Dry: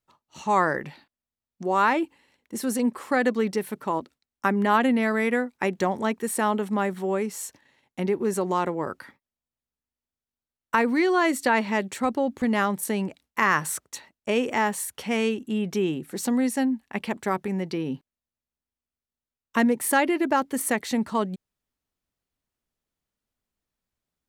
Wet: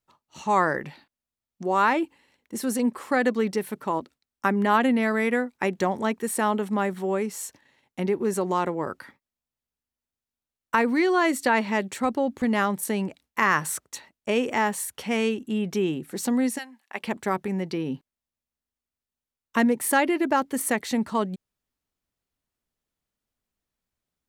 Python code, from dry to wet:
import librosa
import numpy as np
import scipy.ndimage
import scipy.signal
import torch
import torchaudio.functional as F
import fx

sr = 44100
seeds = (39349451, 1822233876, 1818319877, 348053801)

y = fx.highpass(x, sr, hz=fx.line((16.57, 1500.0), (17.02, 420.0)), slope=12, at=(16.57, 17.02), fade=0.02)